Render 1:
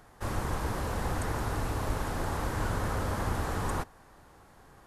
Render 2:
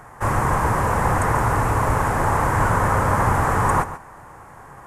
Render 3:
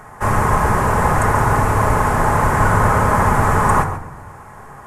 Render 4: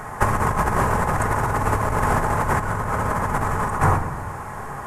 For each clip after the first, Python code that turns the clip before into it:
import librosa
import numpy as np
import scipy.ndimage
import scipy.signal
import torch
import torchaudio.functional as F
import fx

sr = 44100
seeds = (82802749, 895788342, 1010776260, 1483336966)

y1 = fx.graphic_eq_10(x, sr, hz=(125, 500, 1000, 2000, 4000, 8000), db=(8, 3, 10, 7, -10, 6))
y1 = y1 + 10.0 ** (-13.5 / 20.0) * np.pad(y1, (int(139 * sr / 1000.0), 0))[:len(y1)]
y1 = F.gain(torch.from_numpy(y1), 6.5).numpy()
y2 = fx.room_shoebox(y1, sr, seeds[0], volume_m3=2200.0, walls='furnished', distance_m=1.4)
y2 = F.gain(torch.from_numpy(y2), 3.0).numpy()
y3 = fx.over_compress(y2, sr, threshold_db=-19.0, ratio=-0.5)